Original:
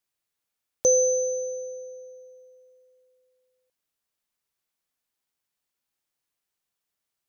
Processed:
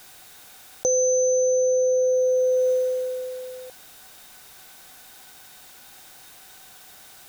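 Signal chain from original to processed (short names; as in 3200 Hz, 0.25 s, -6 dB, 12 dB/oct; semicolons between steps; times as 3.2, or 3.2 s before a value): small resonant body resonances 760/1500/3700 Hz, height 11 dB; fast leveller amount 100%; gain -3.5 dB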